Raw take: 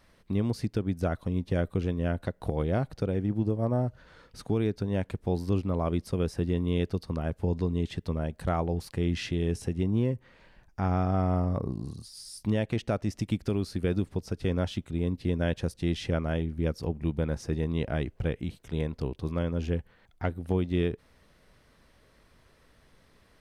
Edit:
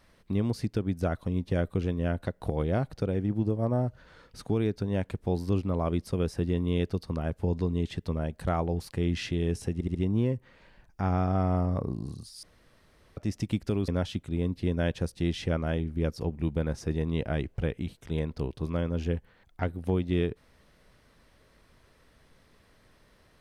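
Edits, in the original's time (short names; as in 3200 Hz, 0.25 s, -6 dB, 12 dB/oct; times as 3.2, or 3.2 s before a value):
9.74 stutter 0.07 s, 4 plays
12.22–12.96 room tone
13.67–14.5 cut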